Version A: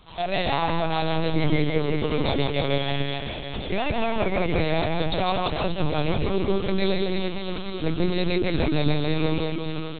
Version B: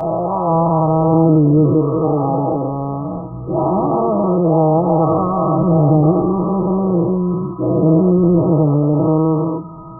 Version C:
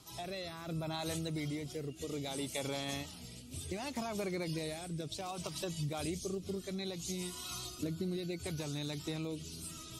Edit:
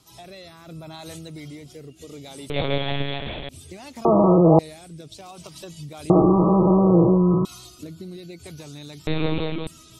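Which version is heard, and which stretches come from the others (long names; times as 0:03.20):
C
0:02.50–0:03.49: punch in from A
0:04.05–0:04.59: punch in from B
0:06.10–0:07.45: punch in from B
0:09.07–0:09.67: punch in from A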